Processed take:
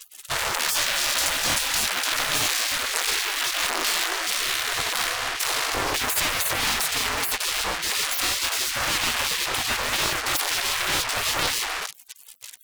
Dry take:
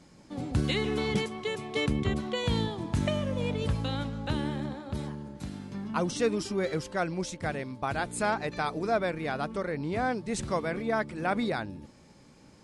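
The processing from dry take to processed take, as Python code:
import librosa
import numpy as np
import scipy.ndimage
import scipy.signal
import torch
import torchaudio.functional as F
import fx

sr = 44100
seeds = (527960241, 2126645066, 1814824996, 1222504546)

y = fx.fuzz(x, sr, gain_db=55.0, gate_db=-50.0)
y = fx.spec_gate(y, sr, threshold_db=-20, keep='weak')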